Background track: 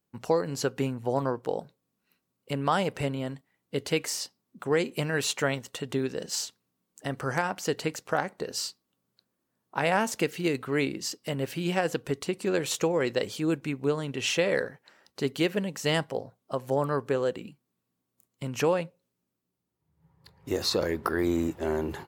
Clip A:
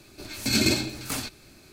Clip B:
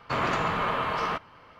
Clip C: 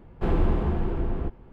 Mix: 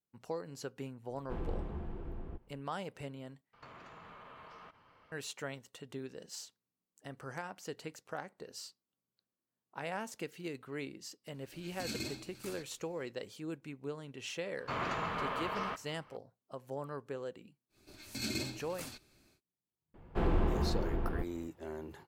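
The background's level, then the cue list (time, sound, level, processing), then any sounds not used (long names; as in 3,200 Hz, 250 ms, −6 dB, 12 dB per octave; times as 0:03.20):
background track −14.5 dB
0:01.08: mix in C −16 dB
0:03.53: overwrite with B −12 dB + downward compressor 16 to 1, threshold −37 dBFS
0:11.34: mix in A −18 dB
0:14.58: mix in B −9.5 dB
0:17.69: mix in A −15 dB, fades 0.10 s
0:19.94: mix in C −3.5 dB + low-shelf EQ 360 Hz −4.5 dB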